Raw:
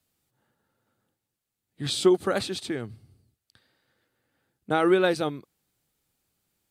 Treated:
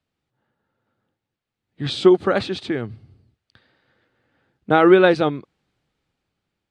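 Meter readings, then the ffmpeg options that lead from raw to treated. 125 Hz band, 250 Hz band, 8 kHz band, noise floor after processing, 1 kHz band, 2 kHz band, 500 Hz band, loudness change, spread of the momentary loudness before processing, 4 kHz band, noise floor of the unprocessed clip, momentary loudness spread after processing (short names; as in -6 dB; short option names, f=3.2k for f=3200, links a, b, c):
+7.5 dB, +7.5 dB, n/a, -84 dBFS, +8.0 dB, +8.0 dB, +8.0 dB, +7.5 dB, 14 LU, +3.0 dB, -85 dBFS, 17 LU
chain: -af "lowpass=3.4k,dynaudnorm=f=520:g=5:m=11.5dB"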